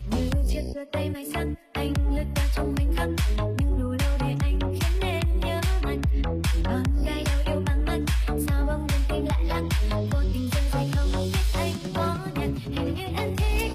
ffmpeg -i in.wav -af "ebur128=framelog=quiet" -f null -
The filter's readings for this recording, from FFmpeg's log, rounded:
Integrated loudness:
  I:         -26.4 LUFS
  Threshold: -36.4 LUFS
Loudness range:
  LRA:         1.2 LU
  Threshold: -46.1 LUFS
  LRA low:   -27.0 LUFS
  LRA high:  -25.8 LUFS